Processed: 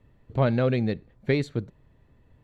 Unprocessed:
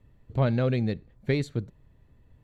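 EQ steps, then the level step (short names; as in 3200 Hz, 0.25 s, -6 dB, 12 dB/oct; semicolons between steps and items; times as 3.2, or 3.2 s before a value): low shelf 160 Hz -6.5 dB; high shelf 6200 Hz -9.5 dB; +4.0 dB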